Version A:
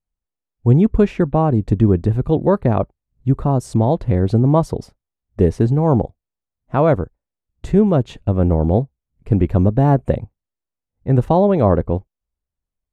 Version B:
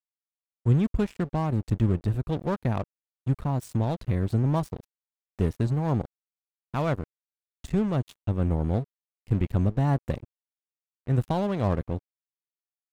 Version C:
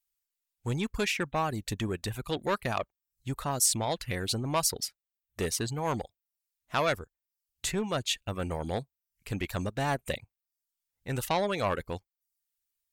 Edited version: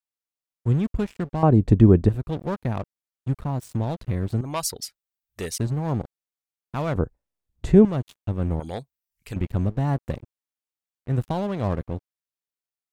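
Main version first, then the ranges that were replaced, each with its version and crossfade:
B
0:01.43–0:02.09: punch in from A
0:04.41–0:05.58: punch in from C
0:06.95–0:07.85: punch in from A
0:08.60–0:09.36: punch in from C

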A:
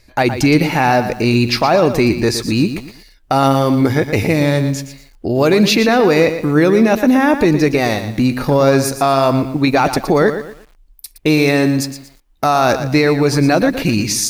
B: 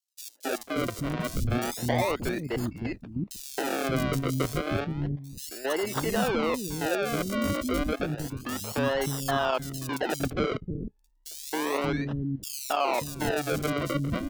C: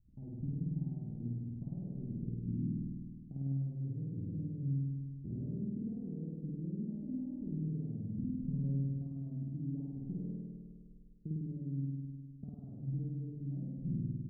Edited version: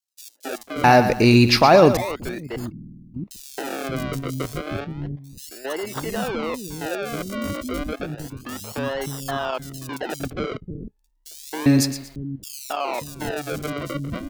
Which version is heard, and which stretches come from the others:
B
0:00.84–0:01.97: punch in from A
0:02.72–0:03.14: punch in from C
0:11.66–0:12.16: punch in from A

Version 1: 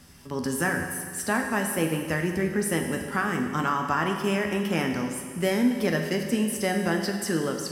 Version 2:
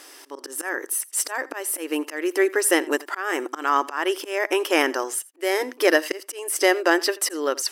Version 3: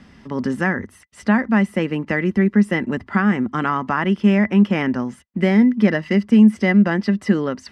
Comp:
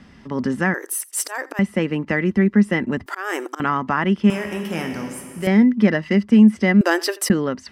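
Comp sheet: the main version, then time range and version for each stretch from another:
3
0:00.74–0:01.59: punch in from 2
0:03.06–0:03.60: punch in from 2
0:04.30–0:05.47: punch in from 1
0:06.81–0:07.30: punch in from 2

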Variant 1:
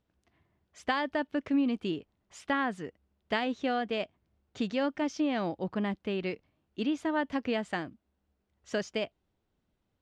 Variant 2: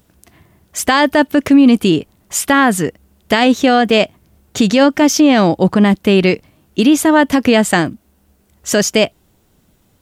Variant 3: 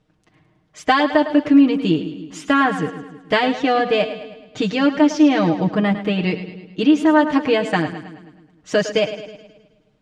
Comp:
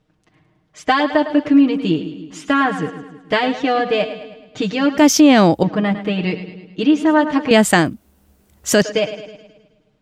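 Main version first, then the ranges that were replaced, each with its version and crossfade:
3
0:04.98–0:05.63: punch in from 2
0:07.51–0:08.82: punch in from 2
not used: 1

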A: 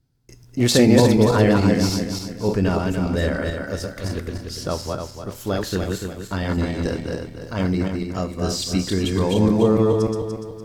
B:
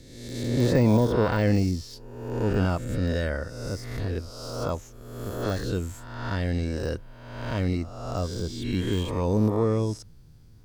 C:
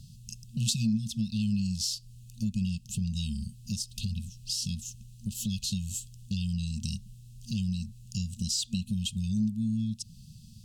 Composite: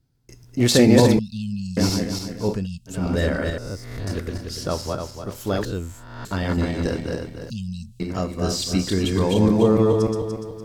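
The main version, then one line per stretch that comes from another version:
A
0:01.19–0:01.77: punch in from C
0:02.55–0:02.98: punch in from C, crossfade 0.24 s
0:03.58–0:04.07: punch in from B
0:05.65–0:06.25: punch in from B
0:07.50–0:08.00: punch in from C

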